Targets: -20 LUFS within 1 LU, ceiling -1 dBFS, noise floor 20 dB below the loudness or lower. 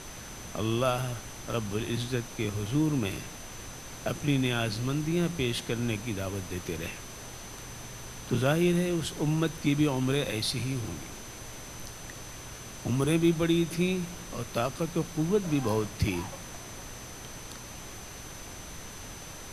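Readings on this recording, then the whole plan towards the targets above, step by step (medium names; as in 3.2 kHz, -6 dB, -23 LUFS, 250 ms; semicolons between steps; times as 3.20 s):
steady tone 6.1 kHz; tone level -48 dBFS; noise floor -44 dBFS; noise floor target -50 dBFS; loudness -30.0 LUFS; peak level -11.5 dBFS; loudness target -20.0 LUFS
-> band-stop 6.1 kHz, Q 30; noise print and reduce 6 dB; trim +10 dB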